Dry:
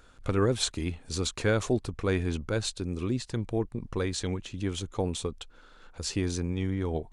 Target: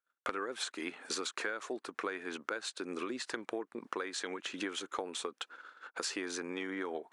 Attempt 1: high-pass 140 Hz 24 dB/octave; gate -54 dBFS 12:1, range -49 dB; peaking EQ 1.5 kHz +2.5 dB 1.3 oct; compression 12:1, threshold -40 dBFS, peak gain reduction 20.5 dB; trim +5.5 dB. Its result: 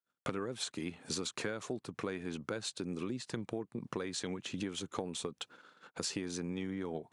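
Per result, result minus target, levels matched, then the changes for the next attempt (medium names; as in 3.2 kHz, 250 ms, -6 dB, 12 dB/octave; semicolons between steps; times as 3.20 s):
125 Hz band +17.0 dB; 2 kHz band -6.0 dB
change: high-pass 290 Hz 24 dB/octave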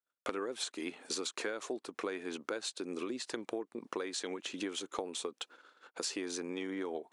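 2 kHz band -4.5 dB
change: peaking EQ 1.5 kHz +12 dB 1.3 oct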